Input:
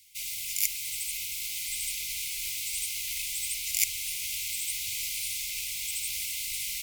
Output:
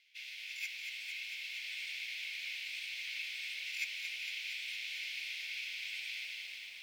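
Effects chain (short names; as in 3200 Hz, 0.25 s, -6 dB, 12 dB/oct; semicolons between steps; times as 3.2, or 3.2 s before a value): ending faded out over 0.71 s; steep high-pass 690 Hz 96 dB/oct; high shelf 2200 Hz -7 dB; formant-preserving pitch shift -5.5 st; air absorption 300 m; on a send: dark delay 0.486 s, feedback 52%, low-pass 2200 Hz, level -15 dB; on the sum: lo-fi delay 0.229 s, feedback 80%, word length 12-bit, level -6.5 dB; gain +7 dB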